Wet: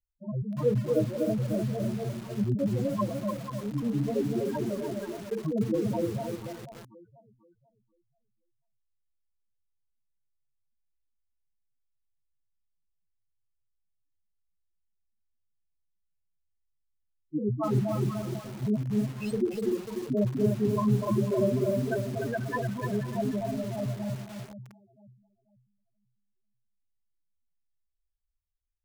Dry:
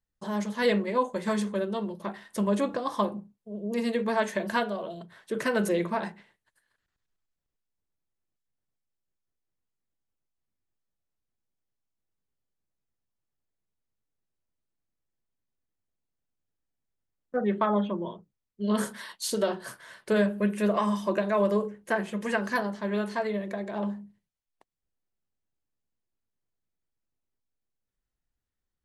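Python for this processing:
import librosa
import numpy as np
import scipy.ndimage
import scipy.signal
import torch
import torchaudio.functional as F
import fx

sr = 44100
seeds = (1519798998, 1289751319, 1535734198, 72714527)

p1 = fx.pitch_trill(x, sr, semitones=-8.5, every_ms=106)
p2 = p1 + fx.echo_alternate(p1, sr, ms=244, hz=930.0, feedback_pct=54, wet_db=-2.5, dry=0)
p3 = fx.spec_topn(p2, sr, count=4)
y = fx.echo_crushed(p3, sr, ms=297, feedback_pct=35, bits=7, wet_db=-4.5)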